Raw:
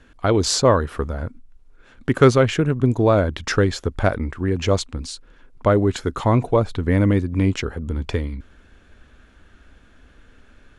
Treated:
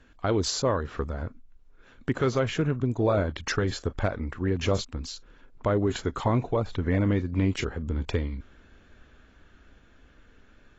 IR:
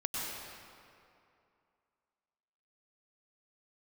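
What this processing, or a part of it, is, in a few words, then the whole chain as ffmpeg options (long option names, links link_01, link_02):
low-bitrate web radio: -af "dynaudnorm=framelen=580:gausssize=9:maxgain=3dB,alimiter=limit=-9.5dB:level=0:latency=1:release=259,volume=-5.5dB" -ar 22050 -c:a aac -b:a 24k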